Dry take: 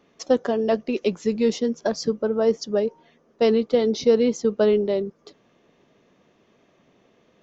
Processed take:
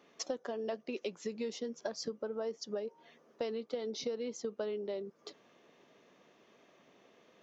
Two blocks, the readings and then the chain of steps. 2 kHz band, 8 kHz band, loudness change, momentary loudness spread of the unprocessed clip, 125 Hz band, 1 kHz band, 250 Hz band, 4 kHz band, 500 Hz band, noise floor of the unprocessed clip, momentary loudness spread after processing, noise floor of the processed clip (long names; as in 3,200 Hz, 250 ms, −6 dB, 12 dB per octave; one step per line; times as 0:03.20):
−14.0 dB, can't be measured, −17.5 dB, 6 LU, below −15 dB, −15.5 dB, −19.5 dB, −11.0 dB, −17.0 dB, −62 dBFS, 3 LU, −67 dBFS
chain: high-pass filter 400 Hz 6 dB per octave
downward compressor 6 to 1, threshold −35 dBFS, peak gain reduction 18.5 dB
level −1 dB